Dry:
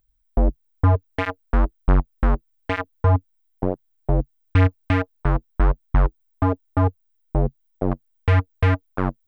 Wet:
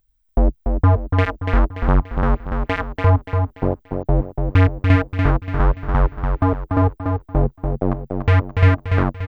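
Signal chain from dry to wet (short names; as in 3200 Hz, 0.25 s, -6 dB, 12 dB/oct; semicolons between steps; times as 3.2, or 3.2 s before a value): feedback echo 0.289 s, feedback 40%, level -5 dB; gain +2.5 dB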